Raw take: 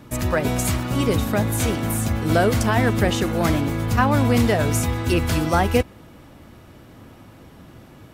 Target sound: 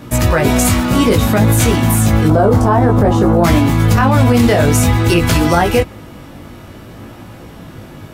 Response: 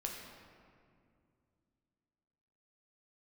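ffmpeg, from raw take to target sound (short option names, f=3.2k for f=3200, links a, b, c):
-filter_complex "[0:a]asettb=1/sr,asplit=3[a][b][c];[a]atrim=end=2.284[d];[b]atrim=start=2.28:end=3.44,asetpts=PTS-STARTPTS,afade=t=in:d=0.004:c=qsin,afade=t=out:st=1.156:d=0.004:c=qsin,highshelf=f=1.5k:t=q:w=1.5:g=-13[e];[c]atrim=start=3.436[f];[d][e]acrossfade=d=0.004:c1=hsin:c2=qsin[g];[g][f]acrossfade=d=0.004:c1=qsin:c2=hsin,flanger=delay=17:depth=3.8:speed=0.55,alimiter=level_in=15.5dB:limit=-1dB:release=50:level=0:latency=1,volume=-1.5dB"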